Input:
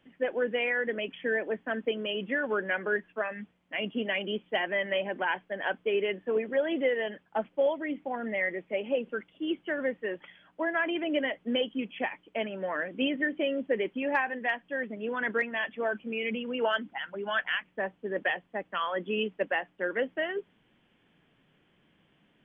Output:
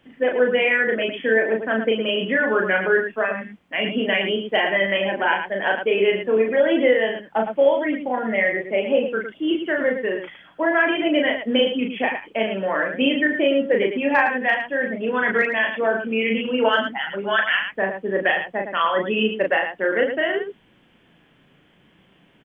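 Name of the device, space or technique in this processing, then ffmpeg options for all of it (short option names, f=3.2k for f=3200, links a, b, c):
slapback doubling: -filter_complex "[0:a]asplit=3[a][b][c];[b]adelay=36,volume=-3dB[d];[c]adelay=111,volume=-7.5dB[e];[a][d][e]amix=inputs=3:normalize=0,volume=8dB"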